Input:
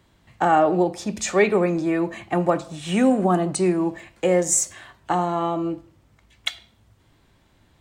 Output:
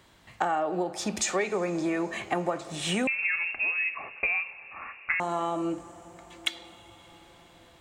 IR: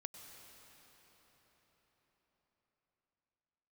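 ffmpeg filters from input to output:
-filter_complex "[0:a]lowshelf=frequency=340:gain=-9.5,acompressor=threshold=-31dB:ratio=6,asplit=2[link_01][link_02];[1:a]atrim=start_sample=2205,asetrate=22491,aresample=44100[link_03];[link_02][link_03]afir=irnorm=-1:irlink=0,volume=-11.5dB[link_04];[link_01][link_04]amix=inputs=2:normalize=0,asettb=1/sr,asplit=3[link_05][link_06][link_07];[link_05]atrim=end=3.074[link_08];[link_06]atrim=start=3.07:end=5.2,asetpts=PTS-STARTPTS,afade=type=in:duration=0.004:curve=qsin,afade=type=out:start_time=2.126:duration=0.004:curve=qsin,lowpass=frequency=2500:width_type=q:width=0.5098,lowpass=frequency=2500:width_type=q:width=0.6013,lowpass=frequency=2500:width_type=q:width=0.9,lowpass=frequency=2500:width_type=q:width=2.563,afreqshift=-2900[link_09];[link_07]atrim=start=5.196[link_10];[link_08][link_09]acrossfade=duration=0.004:curve1=hsin:curve2=qsin[link_11];[link_11][link_10]acrossfade=duration=0.004:curve1=qsin:curve2=hsin,volume=3.5dB"

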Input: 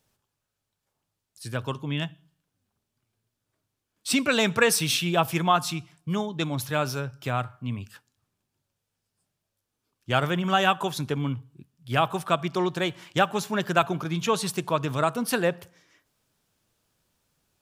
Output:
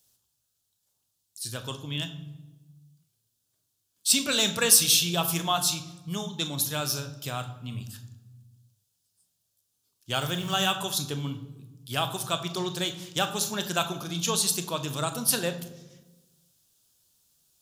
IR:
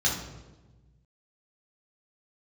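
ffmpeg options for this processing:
-filter_complex "[0:a]aexciter=amount=4:drive=6.4:freq=3100,asettb=1/sr,asplit=3[link_01][link_02][link_03];[link_01]atrim=end=10.214[link_04];[link_02]atrim=start=10.21:end=10.72,asetpts=PTS-STARTPTS,afade=type=in:duration=0.004:curve=qsin,afade=type=out:start_time=0.506:duration=0.004:curve=qsin,acrusher=bits=5:mix=0:aa=0.5[link_05];[link_03]atrim=start=10.716[link_06];[link_04][link_05]acrossfade=duration=0.004:curve1=hsin:curve2=qsin[link_07];[link_07][link_06]acrossfade=duration=0.004:curve1=qsin:curve2=hsin,asplit=2[link_08][link_09];[1:a]atrim=start_sample=2205,adelay=25[link_10];[link_09][link_10]afir=irnorm=-1:irlink=0,volume=-19dB[link_11];[link_08][link_11]amix=inputs=2:normalize=0,volume=-7dB"

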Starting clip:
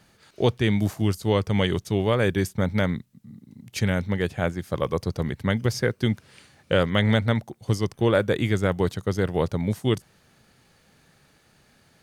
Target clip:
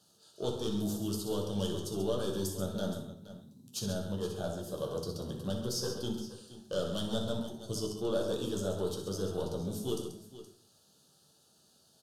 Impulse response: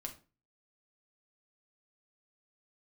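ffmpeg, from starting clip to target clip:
-filter_complex "[0:a]highpass=frequency=730:poles=1,equalizer=frequency=1100:width_type=o:width=1.7:gain=-10.5,asoftclip=type=tanh:threshold=-26dB,asuperstop=centerf=2100:order=4:qfactor=1.1,aecho=1:1:62|135|471:0.282|0.335|0.178[link_01];[1:a]atrim=start_sample=2205,asetrate=27783,aresample=44100[link_02];[link_01][link_02]afir=irnorm=-1:irlink=0"

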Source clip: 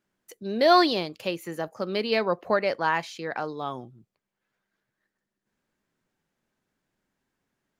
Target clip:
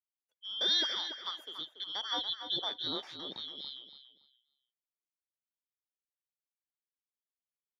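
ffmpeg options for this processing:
ffmpeg -i in.wav -filter_complex "[0:a]afftfilt=real='real(if(lt(b,272),68*(eq(floor(b/68),0)*1+eq(floor(b/68),1)*3+eq(floor(b/68),2)*0+eq(floor(b/68),3)*2)+mod(b,68),b),0)':imag='imag(if(lt(b,272),68*(eq(floor(b/68),0)*1+eq(floor(b/68),1)*3+eq(floor(b/68),2)*0+eq(floor(b/68),3)*2)+mod(b,68),b),0)':win_size=2048:overlap=0.75,highpass=180,bass=frequency=250:gain=-7,treble=frequency=4000:gain=-12,agate=range=-26dB:threshold=-43dB:ratio=16:detection=peak,asplit=2[link_01][link_02];[link_02]adelay=284,lowpass=frequency=3800:poles=1,volume=-8.5dB,asplit=2[link_03][link_04];[link_04]adelay=284,lowpass=frequency=3800:poles=1,volume=0.29,asplit=2[link_05][link_06];[link_06]adelay=284,lowpass=frequency=3800:poles=1,volume=0.29[link_07];[link_01][link_03][link_05][link_07]amix=inputs=4:normalize=0,volume=-7dB" out.wav

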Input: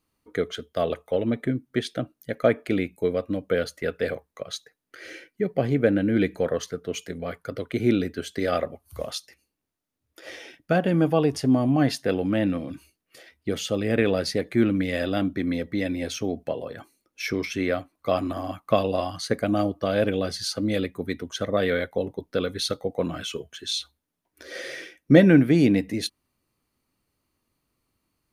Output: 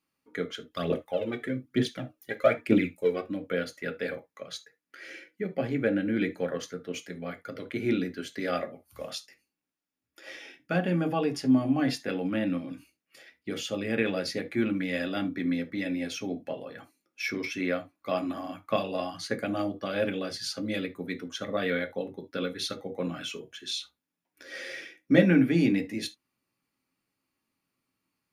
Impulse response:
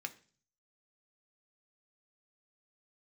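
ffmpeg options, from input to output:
-filter_complex "[0:a]asplit=3[link_01][link_02][link_03];[link_01]afade=type=out:start_time=0.7:duration=0.02[link_04];[link_02]aphaser=in_gain=1:out_gain=1:delay=2.8:decay=0.73:speed=1.1:type=triangular,afade=type=in:start_time=0.7:duration=0.02,afade=type=out:start_time=3.2:duration=0.02[link_05];[link_03]afade=type=in:start_time=3.2:duration=0.02[link_06];[link_04][link_05][link_06]amix=inputs=3:normalize=0[link_07];[1:a]atrim=start_sample=2205,afade=type=out:start_time=0.13:duration=0.01,atrim=end_sample=6174[link_08];[link_07][link_08]afir=irnorm=-1:irlink=0,volume=-2dB"

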